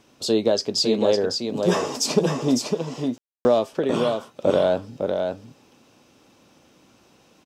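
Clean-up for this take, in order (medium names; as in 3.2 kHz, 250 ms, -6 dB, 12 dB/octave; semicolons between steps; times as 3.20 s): room tone fill 3.18–3.45 s; inverse comb 555 ms -5 dB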